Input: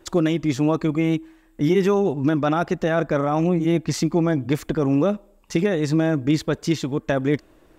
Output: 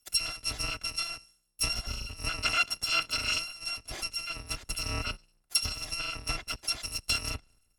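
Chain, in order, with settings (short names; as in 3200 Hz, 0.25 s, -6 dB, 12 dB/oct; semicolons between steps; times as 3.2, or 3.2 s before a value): FFT order left unsorted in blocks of 256 samples; treble ducked by the level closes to 2900 Hz, closed at -15 dBFS; three-band expander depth 100%; gain -2 dB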